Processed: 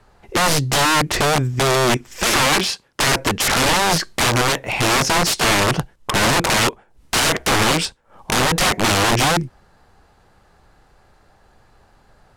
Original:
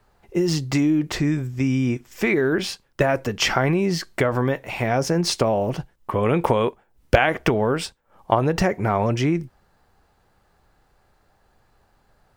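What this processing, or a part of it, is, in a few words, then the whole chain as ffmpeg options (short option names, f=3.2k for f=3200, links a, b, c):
overflowing digital effects unit: -filter_complex "[0:a]asettb=1/sr,asplit=3[a][b][c];[a]atrim=end=2.464[d];[b]atrim=start=2.46:end=3.19,asetpts=PTS-STARTPTS,afade=t=in:d=0.004:c=qsin,afade=t=out:st=0.726:d=0.004:c=qsin,highpass=f=150:p=1[e];[c]atrim=start=3.186[f];[d][e]acrossfade=d=0.004:c1=hsin:c2=qsin[g];[g][f]acrossfade=d=0.004:c1=qsin:c2=hsin,aeval=exprs='(mod(8.91*val(0)+1,2)-1)/8.91':c=same,lowpass=11k,volume=8dB"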